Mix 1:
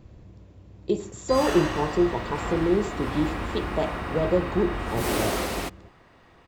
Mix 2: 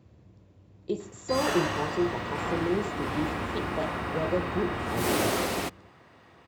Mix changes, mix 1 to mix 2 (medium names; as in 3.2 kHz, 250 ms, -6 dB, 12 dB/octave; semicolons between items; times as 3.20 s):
speech -6.0 dB; master: add high-pass 75 Hz 24 dB/octave